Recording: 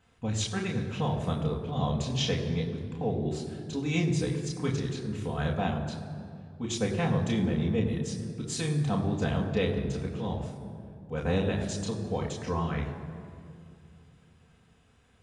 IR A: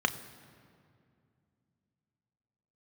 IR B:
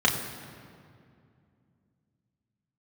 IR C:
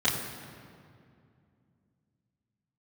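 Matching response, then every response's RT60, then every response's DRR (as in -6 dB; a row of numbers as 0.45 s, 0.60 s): B; 2.4 s, 2.4 s, 2.4 s; 8.0 dB, -1.5 dB, -9.5 dB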